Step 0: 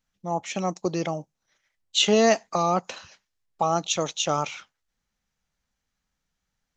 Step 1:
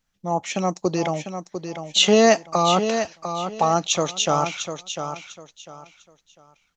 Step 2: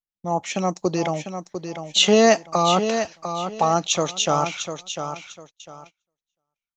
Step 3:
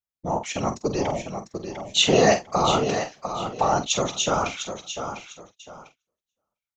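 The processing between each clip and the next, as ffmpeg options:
-af "aecho=1:1:699|1398|2097:0.376|0.094|0.0235,volume=1.58"
-af "agate=range=0.0398:threshold=0.00631:ratio=16:detection=peak"
-filter_complex "[0:a]afftfilt=real='hypot(re,im)*cos(2*PI*random(0))':imag='hypot(re,im)*sin(2*PI*random(1))':win_size=512:overlap=0.75,asplit=2[s0][s1];[s1]adelay=47,volume=0.316[s2];[s0][s2]amix=inputs=2:normalize=0,volume=1.5"

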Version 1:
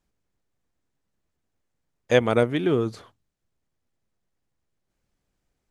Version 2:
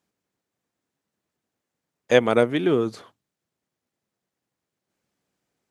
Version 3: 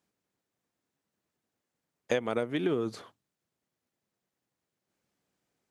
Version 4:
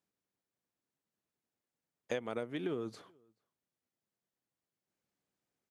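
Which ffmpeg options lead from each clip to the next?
-af "highpass=160,volume=1.26"
-af "acompressor=threshold=0.0794:ratio=16,volume=0.75"
-filter_complex "[0:a]asplit=2[s0][s1];[s1]adelay=431.5,volume=0.0316,highshelf=f=4000:g=-9.71[s2];[s0][s2]amix=inputs=2:normalize=0,volume=0.398"

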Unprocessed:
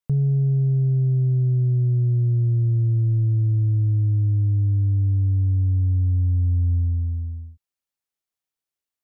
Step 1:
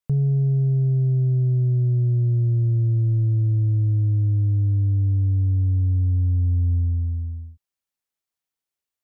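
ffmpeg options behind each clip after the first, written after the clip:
-af "acontrast=74,volume=0.473"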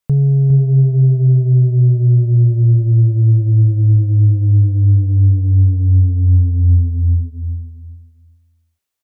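-af "aecho=1:1:407|814|1221:0.422|0.0843|0.0169,volume=2.37"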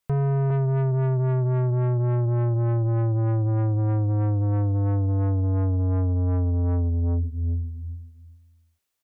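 -af "asoftclip=type=tanh:threshold=0.0891"

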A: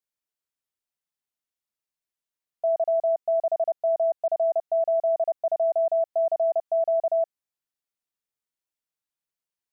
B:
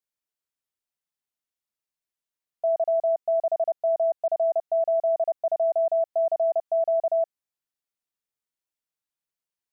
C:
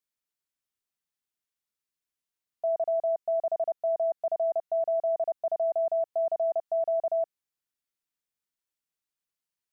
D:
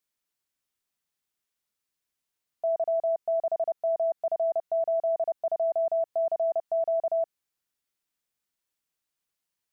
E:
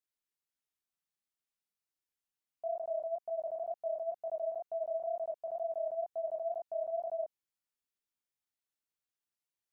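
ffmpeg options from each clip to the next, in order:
-af anull
-af "equalizer=f=660:t=o:w=0.97:g=-4"
-af "alimiter=level_in=1.33:limit=0.0631:level=0:latency=1,volume=0.75,volume=1.68"
-af "flanger=delay=18.5:depth=7.9:speed=2.1,volume=0.473"

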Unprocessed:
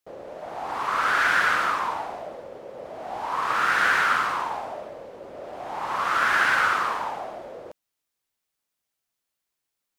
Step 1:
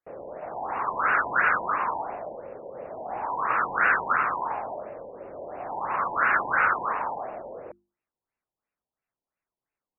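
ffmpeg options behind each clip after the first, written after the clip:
-af "bandreject=f=50:t=h:w=6,bandreject=f=100:t=h:w=6,bandreject=f=150:t=h:w=6,bandreject=f=200:t=h:w=6,bandreject=f=250:t=h:w=6,bandreject=f=300:t=h:w=6,bandreject=f=350:t=h:w=6,afftfilt=real='re*lt(b*sr/1024,1000*pow(2900/1000,0.5+0.5*sin(2*PI*2.9*pts/sr)))':imag='im*lt(b*sr/1024,1000*pow(2900/1000,0.5+0.5*sin(2*PI*2.9*pts/sr)))':win_size=1024:overlap=0.75"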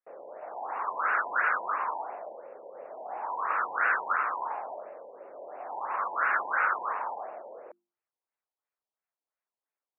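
-af "highpass=480,lowpass=2200,volume=0.668"

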